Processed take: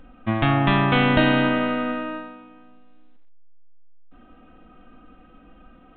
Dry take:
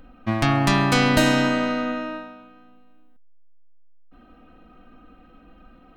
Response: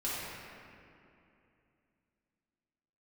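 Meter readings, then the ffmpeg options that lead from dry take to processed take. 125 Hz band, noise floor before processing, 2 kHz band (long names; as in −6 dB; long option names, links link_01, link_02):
+0.5 dB, −51 dBFS, +0.5 dB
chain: -filter_complex "[0:a]asplit=2[link_01][link_02];[1:a]atrim=start_sample=2205,afade=type=out:start_time=0.3:duration=0.01,atrim=end_sample=13671,asetrate=24255,aresample=44100[link_03];[link_02][link_03]afir=irnorm=-1:irlink=0,volume=-27dB[link_04];[link_01][link_04]amix=inputs=2:normalize=0" -ar 8000 -c:a pcm_mulaw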